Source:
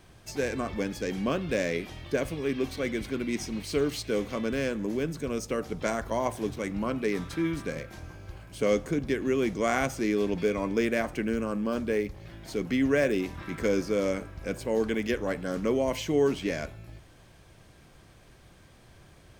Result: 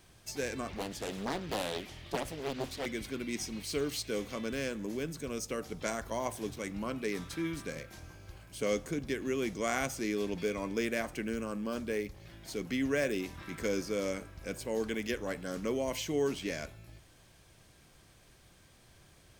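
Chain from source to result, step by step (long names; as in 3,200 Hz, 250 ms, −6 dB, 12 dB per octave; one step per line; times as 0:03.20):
high-shelf EQ 3,000 Hz +8.5 dB
0:00.70–0:02.86: highs frequency-modulated by the lows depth 0.88 ms
level −7 dB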